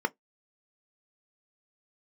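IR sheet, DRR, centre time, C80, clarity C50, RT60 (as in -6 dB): 10.0 dB, 3 ms, 45.0 dB, 33.0 dB, not exponential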